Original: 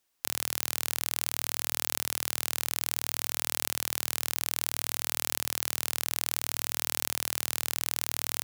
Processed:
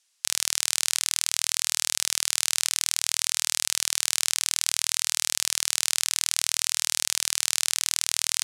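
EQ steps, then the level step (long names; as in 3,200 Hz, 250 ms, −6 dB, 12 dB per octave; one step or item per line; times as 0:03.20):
meter weighting curve ITU-R 468
−1.0 dB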